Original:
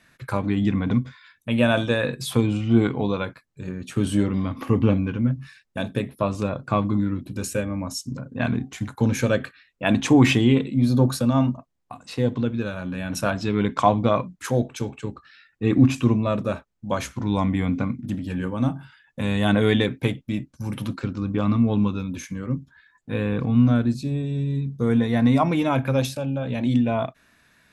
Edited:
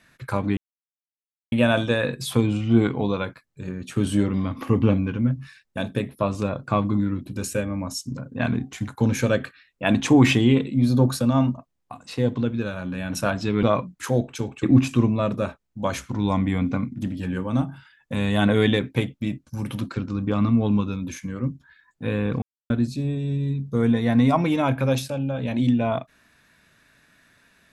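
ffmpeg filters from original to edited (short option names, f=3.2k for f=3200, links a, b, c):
-filter_complex "[0:a]asplit=7[a][b][c][d][e][f][g];[a]atrim=end=0.57,asetpts=PTS-STARTPTS,afade=t=out:st=0.566:d=0.004:c=hsin[h];[b]atrim=start=0.57:end=1.52,asetpts=PTS-STARTPTS,volume=0[i];[c]atrim=start=1.52:end=13.632,asetpts=PTS-STARTPTS,afade=t=in:d=0.004:c=hsin[j];[d]atrim=start=14.038:end=15.042[k];[e]atrim=start=15.698:end=23.49,asetpts=PTS-STARTPTS,afade=t=out:st=7.788:d=0.004:c=hsin[l];[f]atrim=start=23.49:end=23.77,asetpts=PTS-STARTPTS,volume=0[m];[g]atrim=start=23.77,asetpts=PTS-STARTPTS,afade=t=in:d=0.004:c=hsin[n];[h][i][j]concat=n=3:v=0:a=1[o];[o][k]acrossfade=d=0.004:c1=hsin:c2=hsin[p];[l][m][n]concat=n=3:v=0:a=1[q];[p][q]acrossfade=d=0.004:c1=hsin:c2=hsin"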